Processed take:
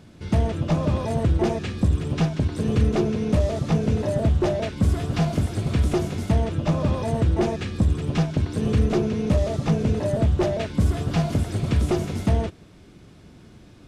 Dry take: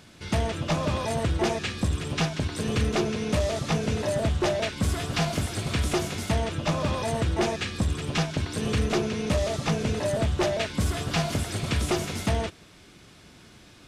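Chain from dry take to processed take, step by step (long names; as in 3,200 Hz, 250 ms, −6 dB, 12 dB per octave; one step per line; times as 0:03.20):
tilt shelving filter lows +6.5 dB, about 760 Hz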